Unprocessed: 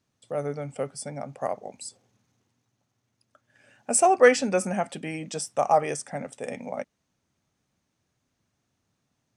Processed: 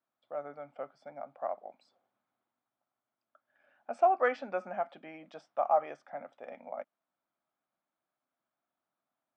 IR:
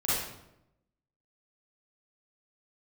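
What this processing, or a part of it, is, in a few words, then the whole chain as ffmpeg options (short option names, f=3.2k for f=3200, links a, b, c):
phone earpiece: -af "highpass=420,equalizer=f=440:t=q:w=4:g=-9,equalizer=f=670:t=q:w=4:g=5,equalizer=f=1.3k:t=q:w=4:g=4,equalizer=f=1.9k:t=q:w=4:g=-6,equalizer=f=2.7k:t=q:w=4:g=-9,lowpass=f=3k:w=0.5412,lowpass=f=3k:w=1.3066,volume=-7.5dB"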